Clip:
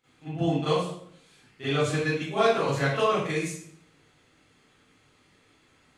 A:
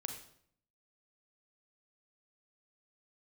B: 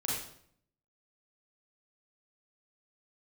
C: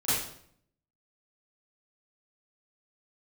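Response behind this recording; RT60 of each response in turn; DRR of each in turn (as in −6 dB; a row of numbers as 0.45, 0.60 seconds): C; 0.65, 0.65, 0.65 seconds; 4.0, −6.0, −15.5 decibels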